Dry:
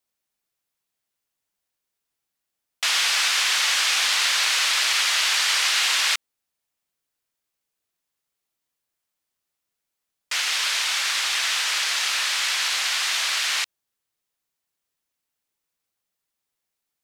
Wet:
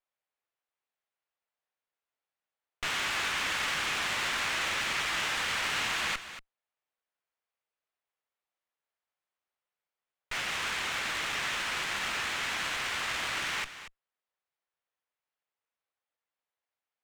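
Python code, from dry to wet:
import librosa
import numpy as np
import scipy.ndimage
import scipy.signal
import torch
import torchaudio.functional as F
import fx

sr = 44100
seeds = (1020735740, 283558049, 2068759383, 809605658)

p1 = scipy.signal.sosfilt(scipy.signal.butter(4, 460.0, 'highpass', fs=sr, output='sos'), x)
p2 = fx.high_shelf(p1, sr, hz=6000.0, db=-10.5)
p3 = 10.0 ** (-19.0 / 20.0) * np.tanh(p2 / 10.0 ** (-19.0 / 20.0))
p4 = fx.air_absorb(p3, sr, metres=110.0)
p5 = p4 + fx.echo_single(p4, sr, ms=234, db=-12.5, dry=0)
p6 = fx.running_max(p5, sr, window=5)
y = p6 * 10.0 ** (-2.5 / 20.0)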